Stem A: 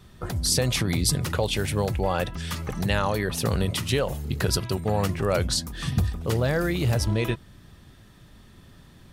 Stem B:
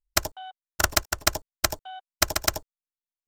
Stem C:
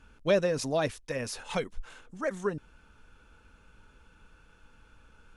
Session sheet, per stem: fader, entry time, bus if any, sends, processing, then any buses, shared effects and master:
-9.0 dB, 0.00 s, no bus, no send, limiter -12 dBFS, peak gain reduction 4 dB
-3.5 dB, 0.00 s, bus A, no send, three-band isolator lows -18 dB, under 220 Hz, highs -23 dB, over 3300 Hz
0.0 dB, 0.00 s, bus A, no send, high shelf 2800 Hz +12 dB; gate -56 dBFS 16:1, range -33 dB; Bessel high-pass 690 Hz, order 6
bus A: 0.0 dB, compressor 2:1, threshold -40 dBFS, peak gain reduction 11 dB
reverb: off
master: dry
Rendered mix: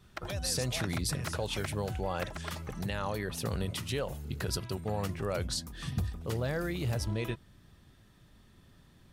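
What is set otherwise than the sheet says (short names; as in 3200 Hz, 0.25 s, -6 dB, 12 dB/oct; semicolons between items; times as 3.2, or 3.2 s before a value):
stem B -3.5 dB -> -10.5 dB; stem C 0.0 dB -> -11.5 dB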